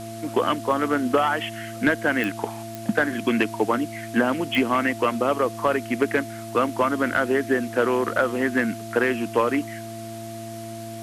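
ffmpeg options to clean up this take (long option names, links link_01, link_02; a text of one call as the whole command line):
ffmpeg -i in.wav -af "adeclick=threshold=4,bandreject=frequency=111.9:width_type=h:width=4,bandreject=frequency=223.8:width_type=h:width=4,bandreject=frequency=335.7:width_type=h:width=4,bandreject=frequency=680:width=30,afwtdn=0.0063" out.wav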